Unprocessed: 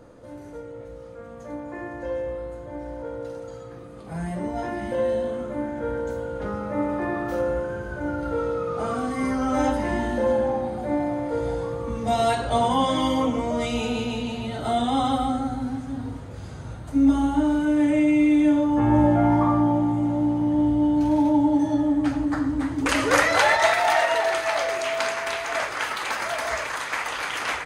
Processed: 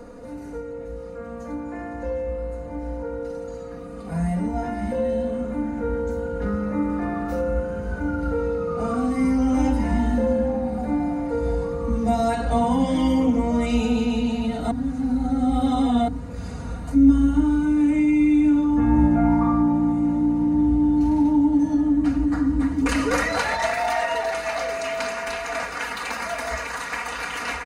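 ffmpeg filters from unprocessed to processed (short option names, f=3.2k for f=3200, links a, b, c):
-filter_complex "[0:a]asplit=3[a][b][c];[a]atrim=end=14.712[d];[b]atrim=start=14.708:end=16.082,asetpts=PTS-STARTPTS,areverse[e];[c]atrim=start=16.078[f];[d][e]acrossfade=d=0.004:c1=hsin:c2=hsin[g];[g][f]acrossfade=d=0.004:c1=hsin:c2=hsin,bandreject=f=3.3k:w=8,aecho=1:1:4.2:0.8,acrossover=split=210[h][i];[i]acompressor=threshold=-52dB:ratio=1.5[j];[h][j]amix=inputs=2:normalize=0,volume=7dB"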